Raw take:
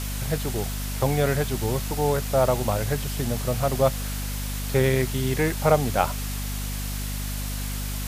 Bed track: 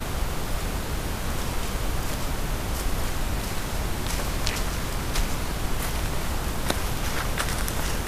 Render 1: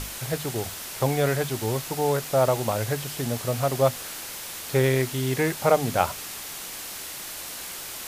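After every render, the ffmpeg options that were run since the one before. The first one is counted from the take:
-af "bandreject=f=50:t=h:w=6,bandreject=f=100:t=h:w=6,bandreject=f=150:t=h:w=6,bandreject=f=200:t=h:w=6,bandreject=f=250:t=h:w=6"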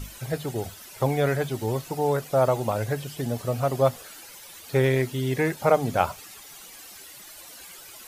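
-af "afftdn=nr=13:nf=-37"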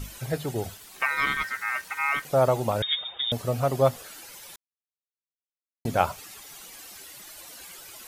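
-filter_complex "[0:a]asettb=1/sr,asplit=3[a][b][c];[a]atrim=end=0.774[d];[b]atrim=start=0.77:end=2.25,asetpts=PTS-STARTPTS,afade=t=in:d=0.004:c=qsin,afade=t=out:st=1.476:d=0.004:c=qsin,aeval=exprs='val(0)*sin(2*PI*1700*n/s)':c=same[e];[c]atrim=start=2.246[f];[d][e]acrossfade=d=0.004:c1=hsin:c2=qsin[g];[g][f]acrossfade=d=0.004:c1=qsin:c2=hsin,asettb=1/sr,asplit=3[h][i][j];[h]atrim=end=2.824[k];[i]atrim=start=2.82:end=3.32,asetpts=PTS-STARTPTS,afade=t=in:d=0.004:c=qsin,afade=t=out:st=0.496:d=0.004:c=qsin,lowpass=f=3.2k:t=q:w=0.5098,lowpass=f=3.2k:t=q:w=0.6013,lowpass=f=3.2k:t=q:w=0.9,lowpass=f=3.2k:t=q:w=2.563,afreqshift=-3800[l];[j]atrim=start=3.316[m];[k][l]acrossfade=d=0.004:c1=hsin:c2=qsin[n];[n][m]acrossfade=d=0.004:c1=qsin:c2=hsin,asplit=3[o][p][q];[o]atrim=end=4.56,asetpts=PTS-STARTPTS,afade=t=out:st=4.556:d=0.004:c=hsin[r];[p]atrim=start=4.56:end=5.85,asetpts=PTS-STARTPTS,volume=0[s];[q]atrim=start=5.85,asetpts=PTS-STARTPTS,afade=t=in:d=0.004:c=hsin[t];[r][s][t]concat=n=3:v=0:a=1"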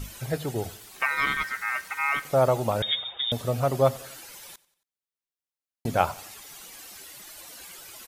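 -af "aecho=1:1:91|182|273:0.0794|0.0397|0.0199"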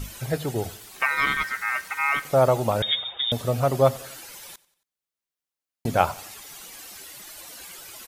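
-af "volume=2.5dB"

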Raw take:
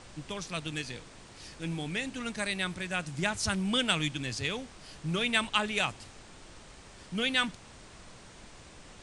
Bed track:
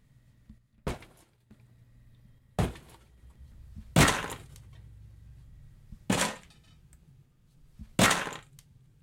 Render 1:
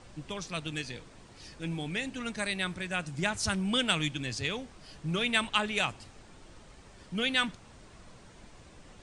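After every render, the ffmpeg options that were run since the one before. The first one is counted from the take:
-af "afftdn=nr=6:nf=-52"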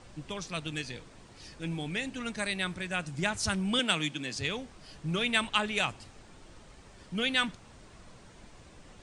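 -filter_complex "[0:a]asettb=1/sr,asplit=3[a][b][c];[a]atrim=end=3.794[d];[b]atrim=start=3.79:end=4.36,asetpts=PTS-STARTPTS,afade=t=in:d=0.004:c=qsin,afade=t=out:st=0.566:d=0.004:c=qsin,highpass=f=160:w=0.5412,highpass=f=160:w=1.3066[e];[c]atrim=start=4.356[f];[d][e]acrossfade=d=0.004:c1=hsin:c2=qsin[g];[g][f]acrossfade=d=0.004:c1=qsin:c2=hsin"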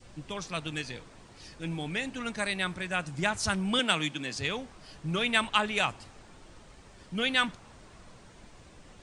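-af "adynamicequalizer=threshold=0.00708:dfrequency=1000:dqfactor=0.75:tfrequency=1000:tqfactor=0.75:attack=5:release=100:ratio=0.375:range=2:mode=boostabove:tftype=bell"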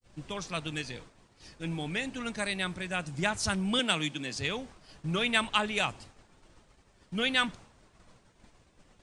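-af "agate=range=-33dB:threshold=-44dB:ratio=3:detection=peak,adynamicequalizer=threshold=0.00794:dfrequency=1300:dqfactor=0.74:tfrequency=1300:tqfactor=0.74:attack=5:release=100:ratio=0.375:range=2:mode=cutabove:tftype=bell"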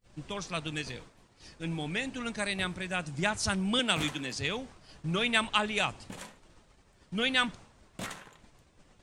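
-filter_complex "[1:a]volume=-17dB[a];[0:a][a]amix=inputs=2:normalize=0"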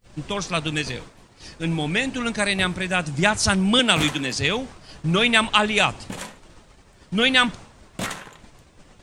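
-af "volume=10.5dB,alimiter=limit=-3dB:level=0:latency=1"

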